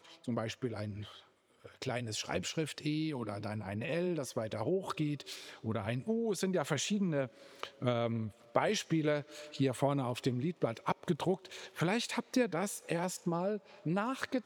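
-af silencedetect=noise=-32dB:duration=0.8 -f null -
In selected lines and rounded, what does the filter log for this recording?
silence_start: 0.90
silence_end: 1.82 | silence_duration: 0.92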